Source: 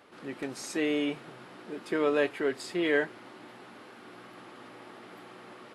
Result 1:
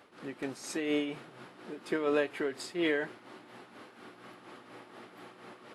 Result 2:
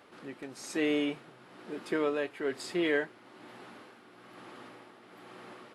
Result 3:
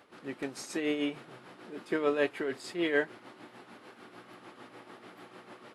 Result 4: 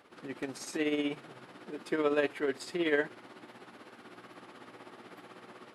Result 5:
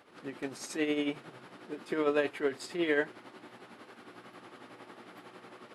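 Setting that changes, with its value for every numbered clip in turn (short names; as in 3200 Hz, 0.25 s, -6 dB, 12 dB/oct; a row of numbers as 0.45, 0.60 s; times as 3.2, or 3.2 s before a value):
tremolo, rate: 4.2, 1.1, 6.7, 16, 11 Hz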